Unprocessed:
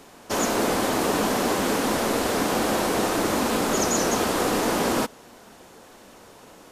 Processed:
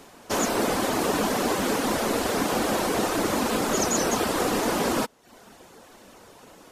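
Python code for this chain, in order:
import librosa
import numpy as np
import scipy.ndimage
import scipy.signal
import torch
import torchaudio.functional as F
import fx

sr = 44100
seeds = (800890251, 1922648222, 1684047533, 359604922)

y = fx.dereverb_blind(x, sr, rt60_s=0.53)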